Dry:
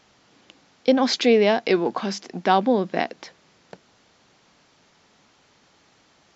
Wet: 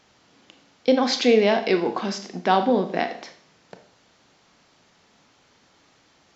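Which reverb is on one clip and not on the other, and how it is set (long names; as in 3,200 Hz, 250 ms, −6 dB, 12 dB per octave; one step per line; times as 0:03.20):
four-comb reverb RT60 0.53 s, combs from 25 ms, DRR 7 dB
level −1 dB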